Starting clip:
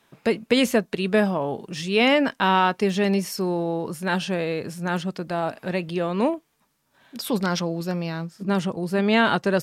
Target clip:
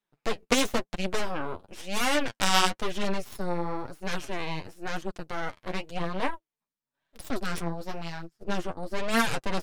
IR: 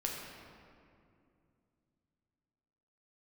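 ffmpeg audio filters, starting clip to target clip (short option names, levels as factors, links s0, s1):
-af "aeval=exprs='0.501*(cos(1*acos(clip(val(0)/0.501,-1,1)))-cos(1*PI/2))+0.141*(cos(3*acos(clip(val(0)/0.501,-1,1)))-cos(3*PI/2))+0.112*(cos(6*acos(clip(val(0)/0.501,-1,1)))-cos(6*PI/2))+0.00708*(cos(7*acos(clip(val(0)/0.501,-1,1)))-cos(7*PI/2))+0.126*(cos(8*acos(clip(val(0)/0.501,-1,1)))-cos(8*PI/2))':c=same,flanger=delay=4.7:depth=7.5:regen=20:speed=0.98:shape=triangular,volume=1.33"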